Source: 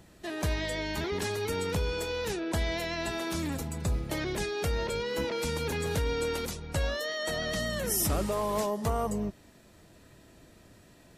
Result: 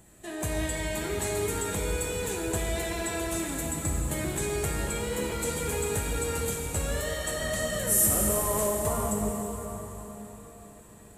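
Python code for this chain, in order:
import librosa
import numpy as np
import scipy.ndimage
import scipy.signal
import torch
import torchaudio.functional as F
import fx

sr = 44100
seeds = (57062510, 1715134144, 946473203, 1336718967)

p1 = fx.high_shelf_res(x, sr, hz=6400.0, db=6.5, q=3.0)
p2 = 10.0 ** (-21.0 / 20.0) * np.tanh(p1 / 10.0 ** (-21.0 / 20.0))
p3 = p1 + F.gain(torch.from_numpy(p2), -10.0).numpy()
p4 = fx.rev_plate(p3, sr, seeds[0], rt60_s=4.5, hf_ratio=0.8, predelay_ms=0, drr_db=-1.5)
y = F.gain(torch.from_numpy(p4), -5.0).numpy()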